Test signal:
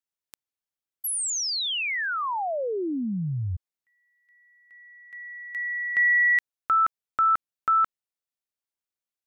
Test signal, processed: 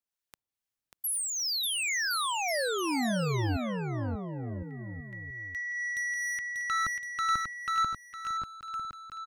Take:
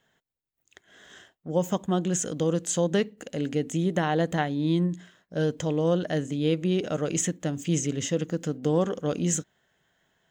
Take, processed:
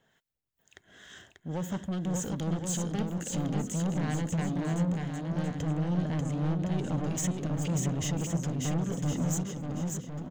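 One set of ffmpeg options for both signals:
ffmpeg -i in.wav -filter_complex "[0:a]asubboost=boost=4.5:cutoff=250,acompressor=threshold=-20dB:ratio=4:release=347:knee=6,acrossover=split=1100[link_01][link_02];[link_01]aeval=exprs='val(0)*(1-0.5/2+0.5/2*cos(2*PI*2.3*n/s))':channel_layout=same[link_03];[link_02]aeval=exprs='val(0)*(1-0.5/2-0.5/2*cos(2*PI*2.3*n/s))':channel_layout=same[link_04];[link_03][link_04]amix=inputs=2:normalize=0,asoftclip=type=tanh:threshold=-30.5dB,aecho=1:1:590|1062|1440|1742|1983:0.631|0.398|0.251|0.158|0.1,volume=2dB" out.wav

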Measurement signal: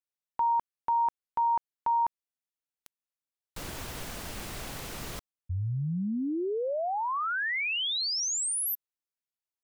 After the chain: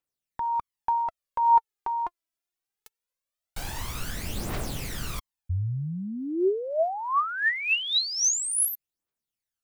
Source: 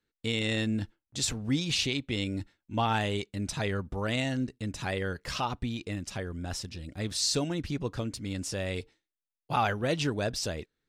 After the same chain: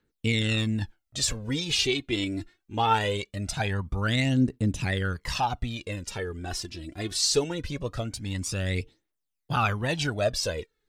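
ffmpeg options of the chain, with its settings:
ffmpeg -i in.wav -af "aphaser=in_gain=1:out_gain=1:delay=3.1:decay=0.64:speed=0.22:type=triangular,volume=1.5dB" out.wav

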